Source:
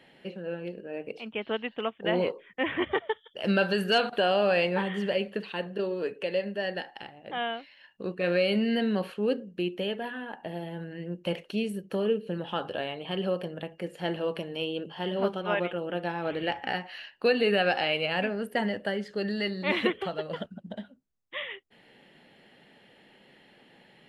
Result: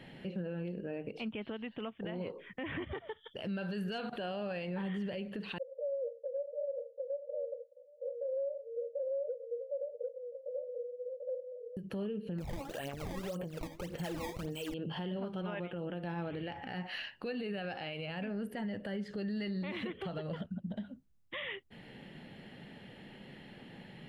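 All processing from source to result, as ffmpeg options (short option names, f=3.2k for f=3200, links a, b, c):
-filter_complex "[0:a]asettb=1/sr,asplit=3[a][b][c];[a]atrim=end=5.584[d];[b]atrim=start=5.58:end=11.77,asetpts=PTS-STARTPTS,afade=t=in:d=0.004:c=qsin,afade=t=out:st=6.186:d=0.004:c=qsin,asuperpass=centerf=530:order=20:qfactor=4,aecho=1:1:741:0.668,atrim=end_sample=272979[e];[c]atrim=start=11.766[f];[d][e]acrossfade=d=0.004:c1=hsin:c2=qsin[g];[g][f]acrossfade=d=0.004:c1=qsin:c2=hsin,asettb=1/sr,asplit=3[h][i][j];[h]atrim=end=12.384[k];[i]atrim=start=12.38:end=14.74,asetpts=PTS-STARTPTS,afade=t=in:d=0.004:c=qsin,afade=t=out:st=2.356:d=0.004:c=qsin,lowshelf=f=170:g=-9.5,acrusher=samples=18:mix=1:aa=0.000001:lfo=1:lforange=28.8:lforate=1.7,aphaser=in_gain=1:out_gain=1:delay=3.7:decay=0.64:speed=1.9:type=sinusoidal[l];[j]atrim=start=14.736[m];[k][l]acrossfade=d=0.004:c1=hsin:c2=qsin[n];[n][m]acrossfade=d=0.004:c1=qsin:c2=hsin,bass=f=250:g=12,treble=f=4k:g=-2,acompressor=threshold=-30dB:ratio=6,alimiter=level_in=9.5dB:limit=-24dB:level=0:latency=1:release=133,volume=-9.5dB,volume=2.5dB"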